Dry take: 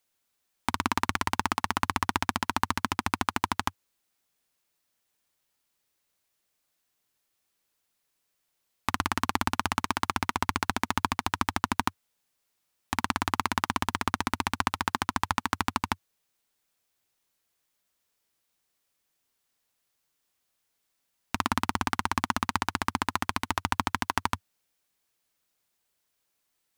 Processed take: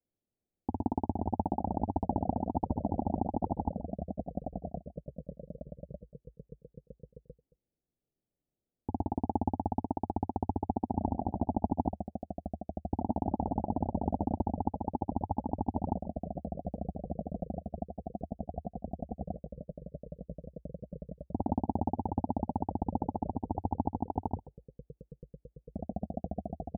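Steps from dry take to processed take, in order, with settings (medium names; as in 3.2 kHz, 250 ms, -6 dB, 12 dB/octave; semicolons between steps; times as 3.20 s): level-controlled noise filter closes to 390 Hz; steep low-pass 850 Hz 96 dB/octave; delay 132 ms -19 dB; ever faster or slower copies 372 ms, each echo -3 st, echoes 3, each echo -6 dB; trim +1.5 dB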